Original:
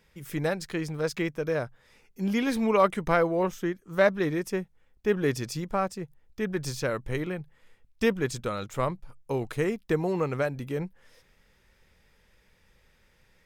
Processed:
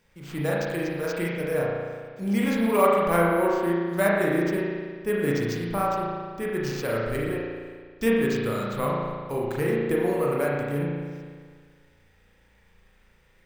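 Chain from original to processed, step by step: careless resampling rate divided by 4×, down none, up hold; spring tank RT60 1.7 s, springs 35 ms, chirp 25 ms, DRR -4.5 dB; trim -2.5 dB

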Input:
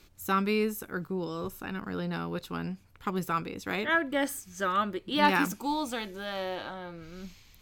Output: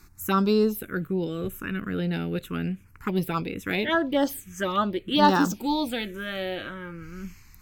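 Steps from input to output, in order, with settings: touch-sensitive phaser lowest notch 530 Hz, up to 2.3 kHz, full sweep at -23 dBFS; trim +7 dB

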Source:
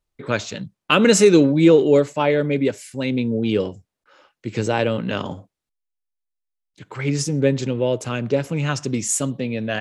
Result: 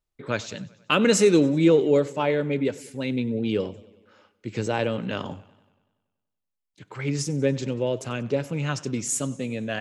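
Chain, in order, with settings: modulated delay 95 ms, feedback 61%, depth 84 cents, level -21 dB; trim -5 dB

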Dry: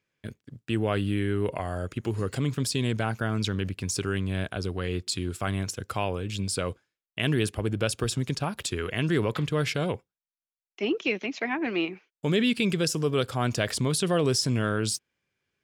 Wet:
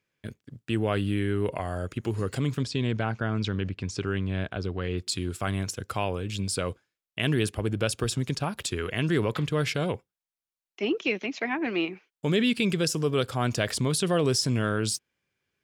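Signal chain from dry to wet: 2.63–4.98 s: distance through air 120 m

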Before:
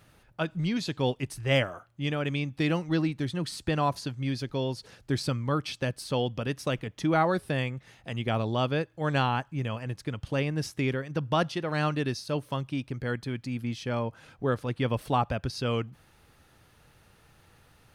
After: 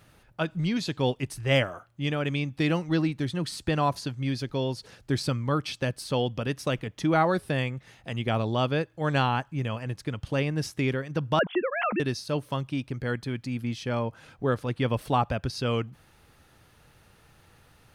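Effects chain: 11.39–12.00 s: formants replaced by sine waves; trim +1.5 dB

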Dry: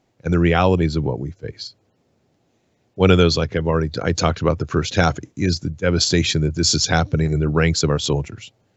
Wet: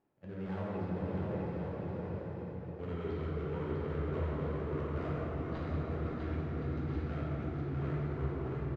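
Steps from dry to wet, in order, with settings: dead-time distortion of 0.23 ms; Doppler pass-by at 2.42 s, 37 m/s, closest 23 m; low-pass 1.9 kHz 12 dB/octave; reverse; compression 10:1, threshold -45 dBFS, peak gain reduction 33 dB; reverse; on a send: bouncing-ball echo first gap 650 ms, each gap 0.65×, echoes 5; on the sum: plate-style reverb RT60 4.2 s, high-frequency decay 0.5×, DRR -7 dB; trim +2.5 dB

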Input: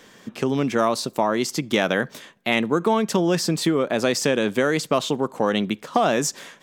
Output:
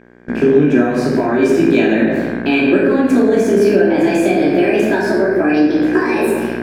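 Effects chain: pitch bend over the whole clip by +8 st starting unshifted; simulated room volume 630 m³, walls mixed, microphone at 2.9 m; mains buzz 60 Hz, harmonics 37, -29 dBFS -2 dB/octave; compression, threshold -16 dBFS, peak gain reduction 7.5 dB; small resonant body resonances 240/360/1600/2400 Hz, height 17 dB, ringing for 20 ms; gate with hold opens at -2 dBFS; trim -7.5 dB

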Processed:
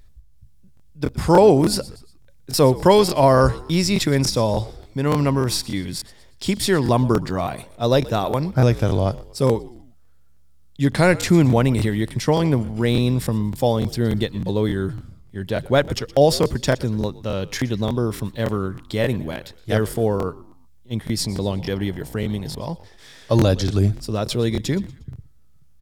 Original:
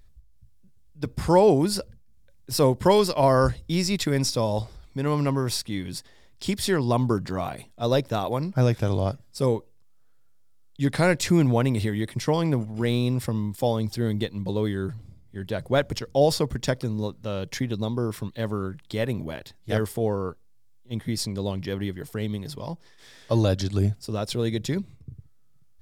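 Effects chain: frequency-shifting echo 119 ms, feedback 41%, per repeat -70 Hz, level -19 dB; 21.23–22.61 s: mains buzz 60 Hz, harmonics 16, -47 dBFS -4 dB/octave; crackling interface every 0.29 s, samples 1024, repeat, from 0.75 s; trim +5 dB

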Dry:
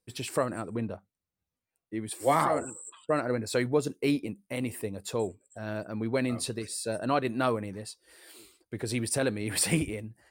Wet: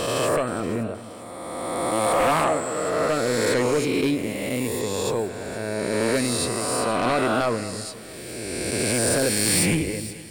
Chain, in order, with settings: reverse spectral sustain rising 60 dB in 2.38 s; sine folder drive 7 dB, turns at -8 dBFS; on a send: two-band feedback delay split 2.8 kHz, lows 219 ms, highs 473 ms, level -15 dB; on the sum: trim -7.5 dB

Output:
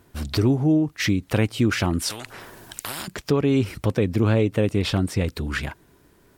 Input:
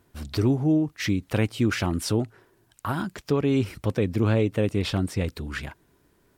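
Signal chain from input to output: in parallel at +1.5 dB: compression, threshold -30 dBFS, peak gain reduction 12 dB; 2.10–3.08 s: on the sum: spectrum-flattening compressor 4:1

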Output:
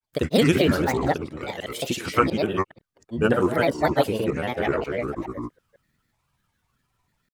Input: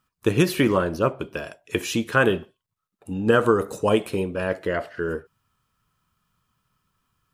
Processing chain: chunks repeated in reverse 218 ms, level -3 dB; band-stop 1.1 kHz, Q 7.7; granulator, grains 20 per s, pitch spread up and down by 7 st

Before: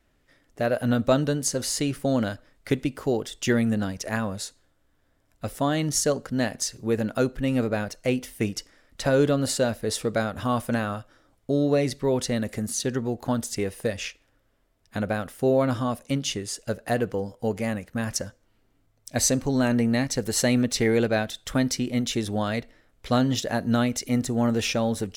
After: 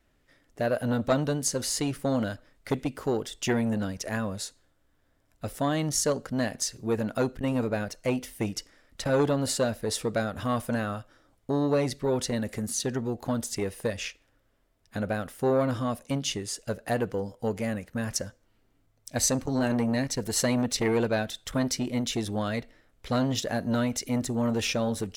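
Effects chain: transformer saturation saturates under 750 Hz; trim -1.5 dB

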